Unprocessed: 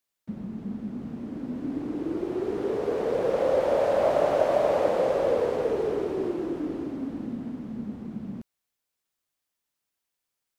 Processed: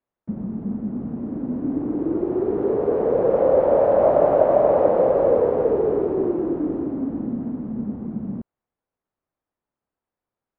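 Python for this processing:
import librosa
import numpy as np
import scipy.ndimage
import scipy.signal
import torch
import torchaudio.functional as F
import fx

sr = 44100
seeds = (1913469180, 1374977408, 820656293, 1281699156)

y = scipy.signal.sosfilt(scipy.signal.butter(2, 1000.0, 'lowpass', fs=sr, output='sos'), x)
y = y * 10.0 ** (7.0 / 20.0)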